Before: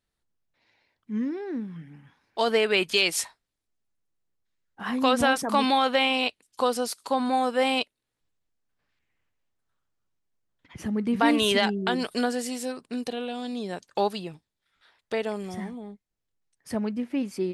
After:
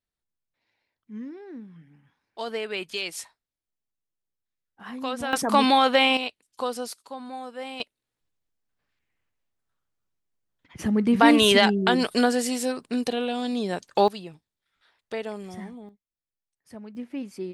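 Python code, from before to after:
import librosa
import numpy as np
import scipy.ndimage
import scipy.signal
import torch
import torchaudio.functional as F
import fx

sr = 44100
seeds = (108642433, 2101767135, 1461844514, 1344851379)

y = fx.gain(x, sr, db=fx.steps((0.0, -8.5), (5.33, 3.5), (6.17, -4.5), (7.02, -12.5), (7.8, -2.0), (10.79, 5.0), (14.08, -3.5), (15.89, -13.0), (16.95, -5.5)))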